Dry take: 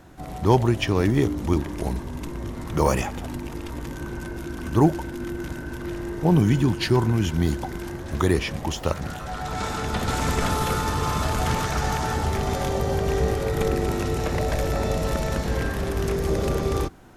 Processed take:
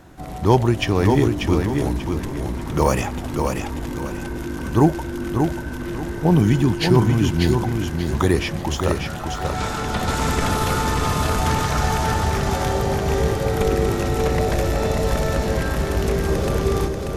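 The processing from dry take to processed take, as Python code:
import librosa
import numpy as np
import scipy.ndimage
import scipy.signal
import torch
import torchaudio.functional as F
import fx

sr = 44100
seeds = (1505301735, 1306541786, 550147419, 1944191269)

y = fx.echo_feedback(x, sr, ms=588, feedback_pct=30, wet_db=-5.0)
y = y * librosa.db_to_amplitude(2.5)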